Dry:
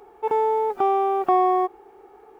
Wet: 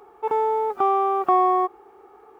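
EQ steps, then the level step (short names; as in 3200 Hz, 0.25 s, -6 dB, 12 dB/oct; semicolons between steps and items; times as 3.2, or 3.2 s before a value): HPF 48 Hz; bell 1200 Hz +8 dB 0.39 oct; -1.5 dB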